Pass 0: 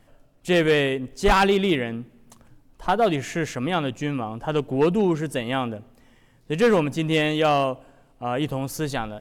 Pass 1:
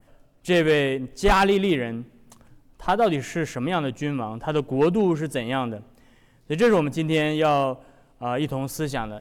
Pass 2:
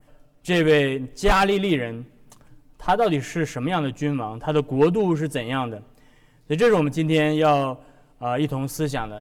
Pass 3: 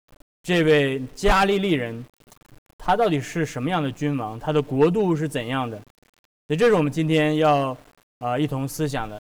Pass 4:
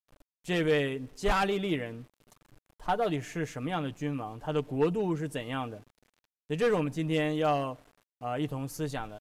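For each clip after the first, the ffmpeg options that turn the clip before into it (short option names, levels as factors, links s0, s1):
-af "adynamicequalizer=threshold=0.01:dfrequency=3900:dqfactor=0.73:tfrequency=3900:tqfactor=0.73:attack=5:release=100:ratio=0.375:range=2.5:mode=cutabove:tftype=bell"
-af "aecho=1:1:6.7:0.45"
-af "aeval=exprs='val(0)*gte(abs(val(0)),0.00531)':c=same"
-af "aresample=32000,aresample=44100,volume=0.355"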